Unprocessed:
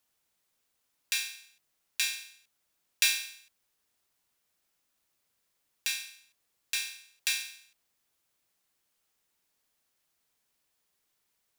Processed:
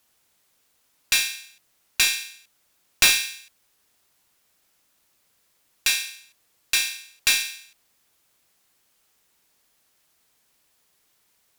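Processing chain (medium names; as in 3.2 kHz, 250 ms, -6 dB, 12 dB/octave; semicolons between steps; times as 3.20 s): Chebyshev shaper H 3 -8 dB, 7 -14 dB, 8 -22 dB, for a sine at -3.5 dBFS; trim +7 dB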